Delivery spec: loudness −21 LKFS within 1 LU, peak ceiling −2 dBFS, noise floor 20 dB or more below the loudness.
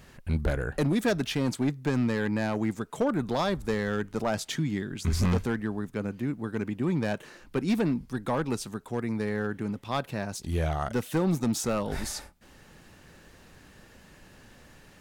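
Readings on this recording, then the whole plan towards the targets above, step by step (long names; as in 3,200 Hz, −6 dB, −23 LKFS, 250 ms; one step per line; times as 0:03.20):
share of clipped samples 1.6%; peaks flattened at −20.0 dBFS; integrated loudness −29.5 LKFS; sample peak −20.0 dBFS; target loudness −21.0 LKFS
→ clipped peaks rebuilt −20 dBFS
level +8.5 dB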